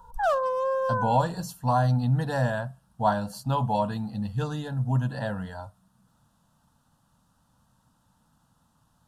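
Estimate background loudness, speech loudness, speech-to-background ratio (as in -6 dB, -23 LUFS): -27.0 LUFS, -27.5 LUFS, -0.5 dB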